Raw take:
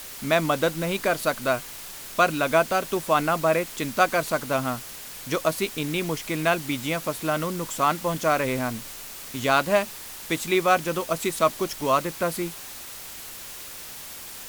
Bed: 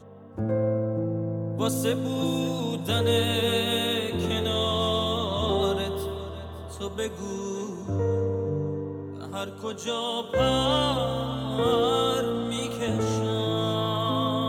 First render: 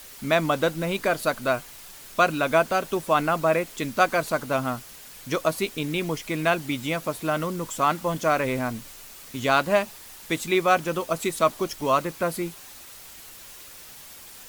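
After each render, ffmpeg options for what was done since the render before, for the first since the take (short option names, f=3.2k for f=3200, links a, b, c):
-af "afftdn=nr=6:nf=-40"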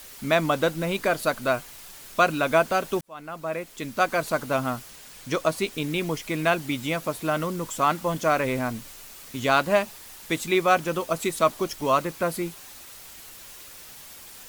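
-filter_complex "[0:a]asettb=1/sr,asplit=3[a][b][c];[a]atrim=end=4.884[d];[b]atrim=start=4.88:end=5.73,asetpts=PTS-STARTPTS,afade=t=in:d=0.004:c=qsin,afade=t=out:st=0.846:d=0.004:c=qsin,equalizer=f=13k:w=2.1:g=-7.5[e];[c]atrim=start=5.726[f];[d][e]acrossfade=d=0.004:c1=hsin:c2=qsin[g];[g][f]acrossfade=d=0.004:c1=qsin:c2=hsin,asplit=2[h][i];[h]atrim=end=3.01,asetpts=PTS-STARTPTS,afade=t=out:st=3.006:d=0.004:c=hsin[j];[i]atrim=start=3.01,asetpts=PTS-STARTPTS,afade=t=in:d=1.34[k];[j][k]concat=n=2:v=0:a=1"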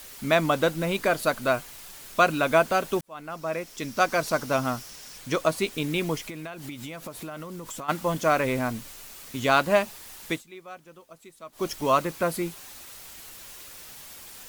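-filter_complex "[0:a]asettb=1/sr,asplit=3[a][b][c];[a]atrim=end=3.304[d];[b]atrim=start=3.3:end=5.18,asetpts=PTS-STARTPTS,afade=t=in:d=0.004:c=qsin,afade=t=out:st=1.876:d=0.004:c=qsin,equalizer=f=5.5k:t=o:w=0.33:g=9[e];[c]atrim=start=5.176[f];[d][e]acrossfade=d=0.004:c1=hsin:c2=qsin[g];[g][f]acrossfade=d=0.004:c1=qsin:c2=hsin,asplit=3[h][i][j];[h]afade=t=out:st=6.25:d=0.02[k];[i]acompressor=threshold=-33dB:ratio=12:attack=3.2:release=140:knee=1:detection=peak,afade=t=in:st=6.25:d=0.02,afade=t=out:st=7.88:d=0.02[l];[j]afade=t=in:st=7.88:d=0.02[m];[k][l][m]amix=inputs=3:normalize=0,asplit=3[n][o][p];[n]atrim=end=10.43,asetpts=PTS-STARTPTS,afade=t=out:st=10.29:d=0.14:silence=0.0749894[q];[o]atrim=start=10.43:end=11.52,asetpts=PTS-STARTPTS,volume=-22.5dB[r];[p]atrim=start=11.52,asetpts=PTS-STARTPTS,afade=t=in:d=0.14:silence=0.0749894[s];[q][r][s]concat=n=3:v=0:a=1"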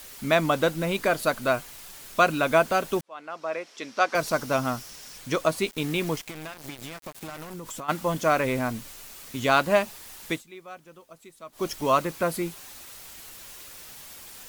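-filter_complex "[0:a]asettb=1/sr,asplit=3[a][b][c];[a]atrim=end=3.014[d];[b]atrim=start=3.01:end=4.15,asetpts=PTS-STARTPTS,afade=t=in:d=0.004:c=qsin,afade=t=out:st=1.136:d=0.004:c=qsin,highpass=370,lowpass=5.1k[e];[c]atrim=start=4.146[f];[d][e]acrossfade=d=0.004:c1=hsin:c2=qsin[g];[g][f]acrossfade=d=0.004:c1=qsin:c2=hsin,asettb=1/sr,asplit=3[h][i][j];[h]atrim=end=5.714[k];[i]atrim=start=5.71:end=7.54,asetpts=PTS-STARTPTS,afade=t=in:d=0.004:c=qsin,afade=t=out:st=1.826:d=0.004:c=qsin,aeval=exprs='val(0)*gte(abs(val(0)),0.0158)':c=same[l];[j]atrim=start=7.536[m];[k][l]acrossfade=d=0.004:c1=hsin:c2=qsin[n];[n][m]acrossfade=d=0.004:c1=qsin:c2=hsin"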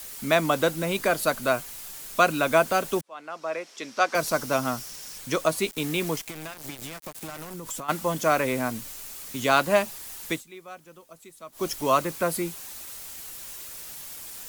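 -filter_complex "[0:a]acrossover=split=140|560|5900[a][b][c][d];[a]alimiter=level_in=18.5dB:limit=-24dB:level=0:latency=1,volume=-18.5dB[e];[d]acontrast=37[f];[e][b][c][f]amix=inputs=4:normalize=0"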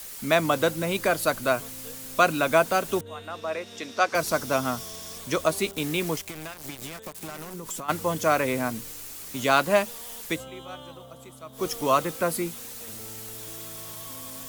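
-filter_complex "[1:a]volume=-20dB[a];[0:a][a]amix=inputs=2:normalize=0"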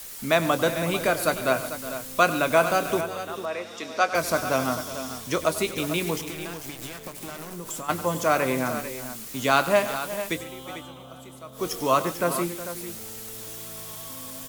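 -filter_complex "[0:a]asplit=2[a][b];[b]adelay=23,volume=-13dB[c];[a][c]amix=inputs=2:normalize=0,aecho=1:1:96|139|365|445:0.178|0.133|0.178|0.266"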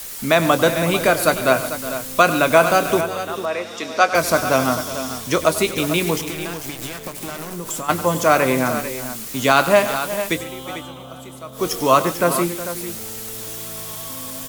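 -af "volume=7dB,alimiter=limit=-1dB:level=0:latency=1"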